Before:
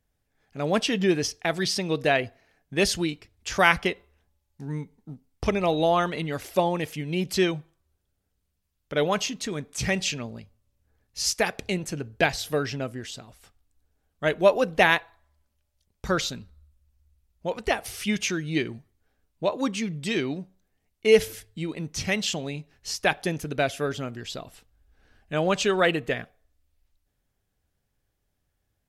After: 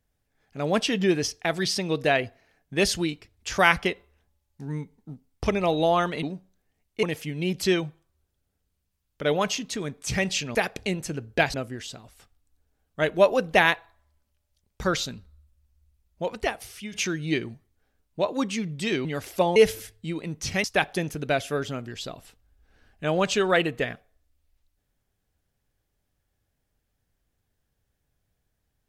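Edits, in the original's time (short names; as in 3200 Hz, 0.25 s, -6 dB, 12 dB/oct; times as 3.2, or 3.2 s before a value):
6.23–6.74 swap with 20.29–21.09
10.26–11.38 cut
12.37–12.78 cut
17.53–18.17 fade out, to -14.5 dB
22.17–22.93 cut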